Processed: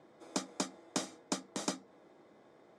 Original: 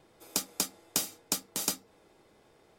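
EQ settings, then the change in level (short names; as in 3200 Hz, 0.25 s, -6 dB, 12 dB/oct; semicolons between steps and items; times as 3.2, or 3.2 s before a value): air absorption 53 m; speaker cabinet 210–9300 Hz, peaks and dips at 430 Hz -6 dB, 860 Hz -4 dB, 1400 Hz -3 dB, 2700 Hz -9 dB, 4600 Hz -4 dB; high shelf 2200 Hz -9.5 dB; +5.5 dB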